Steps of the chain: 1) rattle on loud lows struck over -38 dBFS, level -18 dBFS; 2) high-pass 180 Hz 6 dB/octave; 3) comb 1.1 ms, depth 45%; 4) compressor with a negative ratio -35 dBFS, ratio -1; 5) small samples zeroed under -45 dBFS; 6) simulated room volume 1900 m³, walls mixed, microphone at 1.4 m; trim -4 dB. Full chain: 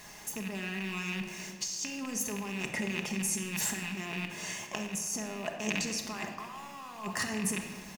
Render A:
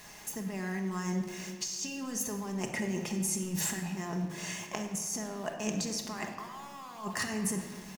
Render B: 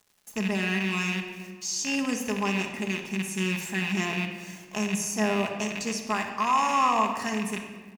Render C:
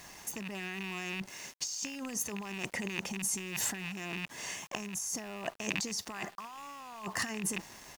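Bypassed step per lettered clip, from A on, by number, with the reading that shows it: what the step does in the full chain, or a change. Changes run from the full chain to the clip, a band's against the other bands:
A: 1, 2 kHz band -5.0 dB; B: 4, crest factor change -5.0 dB; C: 6, echo-to-direct -2.5 dB to none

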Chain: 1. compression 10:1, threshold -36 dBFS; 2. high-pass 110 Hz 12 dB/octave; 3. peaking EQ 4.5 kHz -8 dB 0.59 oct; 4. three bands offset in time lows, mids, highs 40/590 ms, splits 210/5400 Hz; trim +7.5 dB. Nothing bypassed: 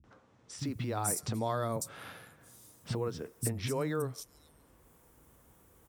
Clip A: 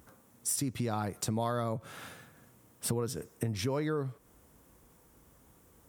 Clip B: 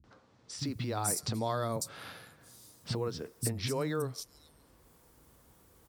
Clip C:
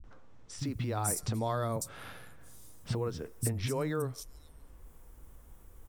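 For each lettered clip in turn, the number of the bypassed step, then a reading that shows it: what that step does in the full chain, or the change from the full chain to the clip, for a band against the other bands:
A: 4, echo-to-direct 21.5 dB to none; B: 3, 4 kHz band +5.0 dB; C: 2, 125 Hz band +2.5 dB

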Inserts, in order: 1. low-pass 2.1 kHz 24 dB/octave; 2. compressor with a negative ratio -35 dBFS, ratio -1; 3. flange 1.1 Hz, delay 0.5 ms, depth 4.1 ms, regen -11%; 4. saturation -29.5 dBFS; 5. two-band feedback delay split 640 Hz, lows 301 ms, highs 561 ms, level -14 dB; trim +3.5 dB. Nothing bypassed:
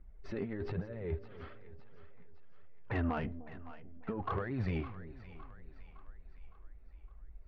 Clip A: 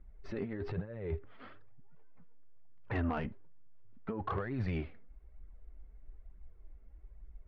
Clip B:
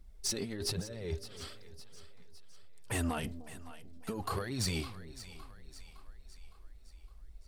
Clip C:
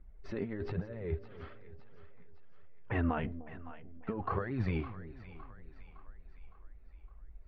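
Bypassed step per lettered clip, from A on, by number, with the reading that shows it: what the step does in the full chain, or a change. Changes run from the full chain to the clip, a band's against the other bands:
5, echo-to-direct -12.5 dB to none; 1, 4 kHz band +19.5 dB; 4, distortion -18 dB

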